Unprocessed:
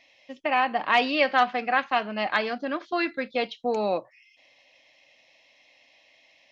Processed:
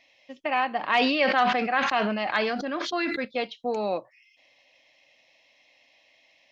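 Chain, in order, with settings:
0:00.79–0:03.25: level that may fall only so fast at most 31 dB per second
level −2 dB

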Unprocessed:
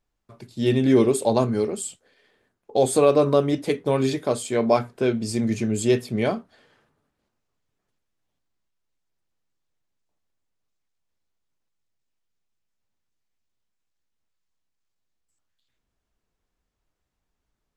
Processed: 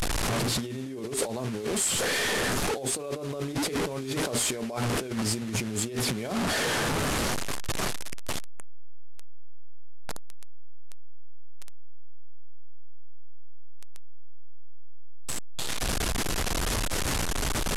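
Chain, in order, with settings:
linear delta modulator 64 kbit/s, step −25.5 dBFS
brickwall limiter −12 dBFS, peak gain reduction 7 dB
compressor whose output falls as the input rises −30 dBFS, ratio −1
level +2 dB

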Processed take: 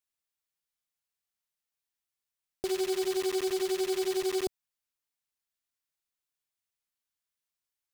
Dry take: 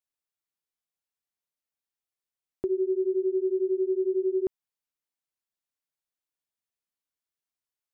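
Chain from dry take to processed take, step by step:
one scale factor per block 3 bits
parametric band 360 Hz −6.5 dB 2.7 octaves
highs frequency-modulated by the lows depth 0.28 ms
level +2.5 dB

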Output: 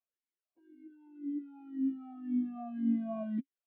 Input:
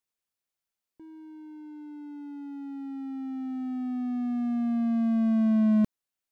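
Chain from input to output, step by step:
time stretch by phase vocoder 0.58×
high-frequency loss of the air 230 metres
formant filter swept between two vowels a-i 1.9 Hz
level +7.5 dB

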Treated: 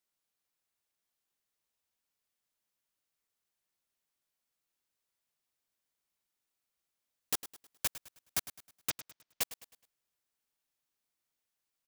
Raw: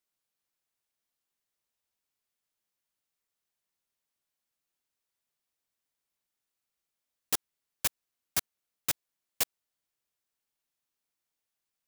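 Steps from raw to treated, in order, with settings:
in parallel at −1 dB: downward compressor, threshold −37 dBFS, peak gain reduction 13 dB
0:08.90–0:09.41: on the sum: Butterworth low-pass 6,200 Hz
repeating echo 105 ms, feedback 39%, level −14.5 dB
level −6 dB

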